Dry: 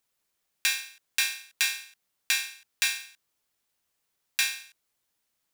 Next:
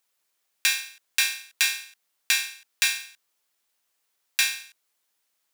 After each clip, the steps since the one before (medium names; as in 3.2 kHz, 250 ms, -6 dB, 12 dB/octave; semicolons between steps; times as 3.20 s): high-pass 490 Hz 6 dB/octave; trim +3.5 dB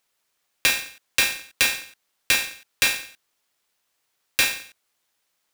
square wave that keeps the level; trim -1.5 dB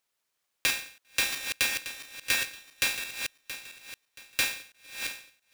backward echo that repeats 338 ms, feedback 54%, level -7 dB; trim -7 dB